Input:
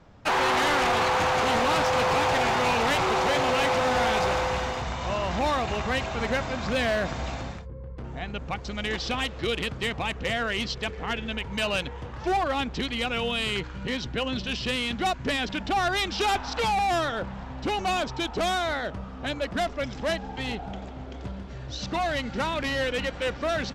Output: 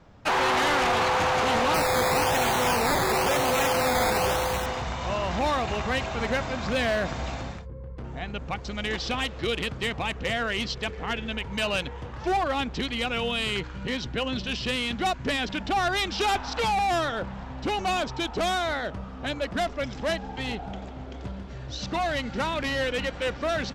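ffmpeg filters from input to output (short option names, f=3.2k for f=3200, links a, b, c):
-filter_complex "[0:a]asettb=1/sr,asplit=3[a][b][c];[a]atrim=end=1.744[d];[b]atrim=start=1.74:end=4.66,asetpts=PTS-STARTPTS,afade=t=in:d=0.004:c=qsin,afade=t=out:st=2.916:d=0.004:c=qsin,acrusher=samples=12:mix=1:aa=0.000001:lfo=1:lforange=7.2:lforate=1[e];[c]atrim=start=4.656[f];[d][e]acrossfade=d=0.004:c1=hsin:c2=qsin[g];[g][f]acrossfade=d=0.004:c1=qsin:c2=hsin"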